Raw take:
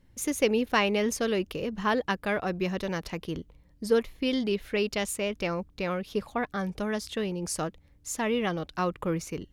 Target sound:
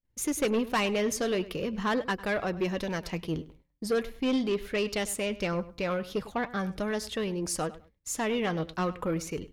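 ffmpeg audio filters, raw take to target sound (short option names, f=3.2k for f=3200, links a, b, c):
-filter_complex "[0:a]agate=range=-33dB:threshold=-46dB:ratio=3:detection=peak,flanger=delay=1.5:depth=6.1:regen=67:speed=0.42:shape=triangular,asoftclip=type=tanh:threshold=-27dB,asplit=2[a][b];[b]adelay=101,lowpass=f=4.7k:p=1,volume=-17dB,asplit=2[c][d];[d]adelay=101,lowpass=f=4.7k:p=1,volume=0.22[e];[a][c][e]amix=inputs=3:normalize=0,volume=5.5dB"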